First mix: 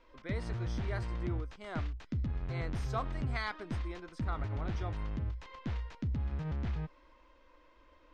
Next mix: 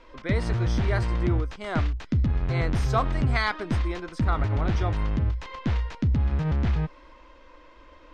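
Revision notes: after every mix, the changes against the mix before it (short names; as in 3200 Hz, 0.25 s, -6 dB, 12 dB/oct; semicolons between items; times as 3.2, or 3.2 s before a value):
speech +11.5 dB; background +11.5 dB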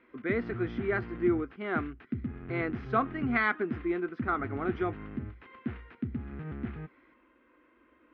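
background -9.5 dB; master: add speaker cabinet 120–2500 Hz, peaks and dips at 160 Hz -4 dB, 240 Hz +8 dB, 370 Hz +6 dB, 570 Hz -9 dB, 940 Hz -9 dB, 1400 Hz +3 dB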